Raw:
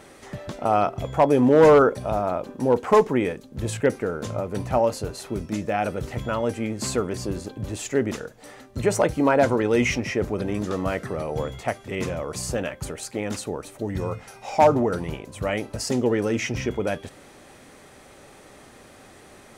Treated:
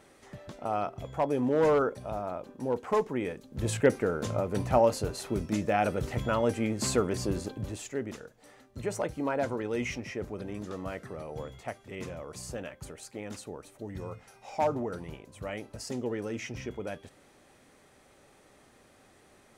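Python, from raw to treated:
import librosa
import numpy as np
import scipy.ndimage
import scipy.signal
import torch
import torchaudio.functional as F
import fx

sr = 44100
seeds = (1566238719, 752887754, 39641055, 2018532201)

y = fx.gain(x, sr, db=fx.line((3.13, -10.5), (3.71, -2.0), (7.51, -2.0), (7.94, -11.5)))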